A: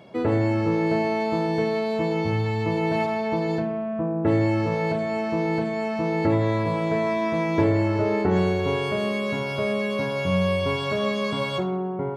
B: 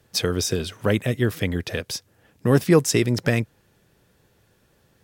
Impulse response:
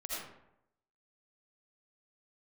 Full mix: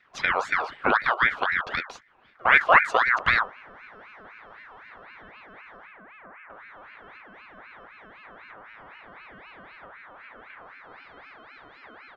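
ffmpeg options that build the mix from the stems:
-filter_complex "[0:a]acompressor=threshold=-23dB:ratio=6,adelay=2250,volume=-17.5dB[a];[1:a]bandreject=f=50:t=h:w=6,bandreject=f=100:t=h:w=6,bandreject=f=150:t=h:w=6,bandreject=f=200:t=h:w=6,bandreject=f=250:t=h:w=6,bandreject=f=300:t=h:w=6,bandreject=f=350:t=h:w=6,bandreject=f=400:t=h:w=6,bandreject=f=450:t=h:w=6,bandreject=f=500:t=h:w=6,volume=3dB[b];[a][b]amix=inputs=2:normalize=0,lowpass=1.8k,aeval=exprs='val(0)*sin(2*PI*1400*n/s+1400*0.4/3.9*sin(2*PI*3.9*n/s))':c=same"

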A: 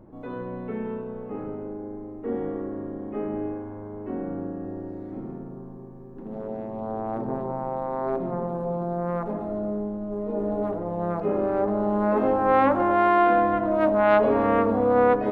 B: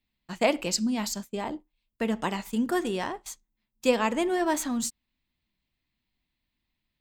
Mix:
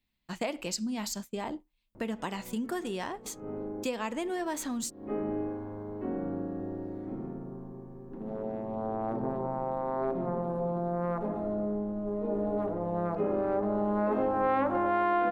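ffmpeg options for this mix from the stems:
-filter_complex "[0:a]adelay=1950,volume=-2.5dB[a];[1:a]acompressor=threshold=-32dB:ratio=2.5,volume=-0.5dB,asplit=2[b][c];[c]apad=whole_len=761435[d];[a][d]sidechaincompress=threshold=-54dB:ratio=8:attack=31:release=165[e];[e][b]amix=inputs=2:normalize=0,acompressor=threshold=-27dB:ratio=2"

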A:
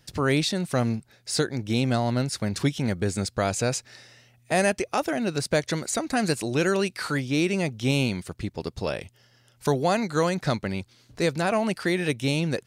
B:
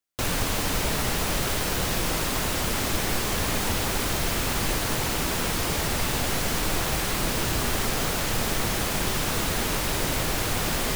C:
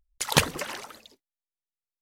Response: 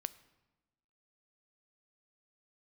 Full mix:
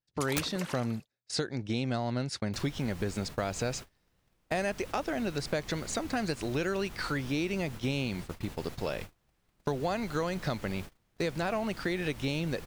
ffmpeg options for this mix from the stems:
-filter_complex "[0:a]lowpass=6.1k,lowshelf=f=180:g=-2,volume=-2.5dB[a];[1:a]acrossover=split=250|3600[b][c][d];[b]acompressor=threshold=-29dB:ratio=4[e];[c]acompressor=threshold=-37dB:ratio=4[f];[d]acompressor=threshold=-43dB:ratio=4[g];[e][f][g]amix=inputs=3:normalize=0,adelay=2350,volume=-12dB[h];[2:a]aeval=exprs='(mod(2.51*val(0)+1,2)-1)/2.51':c=same,volume=-5dB[i];[a][h][i]amix=inputs=3:normalize=0,agate=range=-30dB:threshold=-37dB:ratio=16:detection=peak,acompressor=threshold=-29dB:ratio=3"

